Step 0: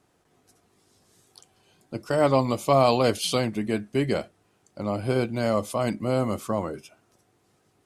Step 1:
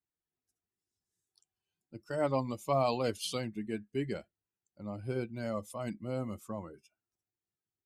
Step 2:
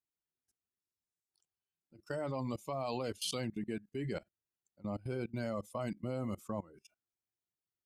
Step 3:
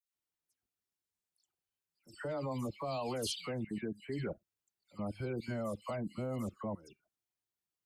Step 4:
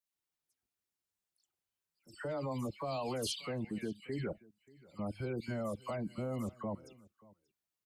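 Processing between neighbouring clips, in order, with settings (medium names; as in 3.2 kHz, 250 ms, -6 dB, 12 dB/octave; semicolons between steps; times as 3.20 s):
expander on every frequency bin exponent 1.5; trim -8.5 dB
level held to a coarse grid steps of 21 dB; trim +5 dB
phase dispersion lows, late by 147 ms, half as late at 2.2 kHz
delay 583 ms -23 dB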